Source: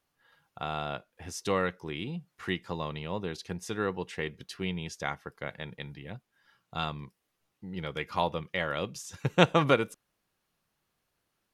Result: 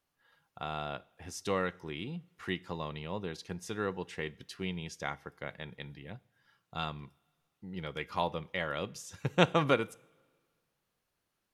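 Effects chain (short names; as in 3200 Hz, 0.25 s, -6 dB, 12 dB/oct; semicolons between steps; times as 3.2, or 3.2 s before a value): two-slope reverb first 0.5 s, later 1.8 s, from -16 dB, DRR 19.5 dB; gain -3.5 dB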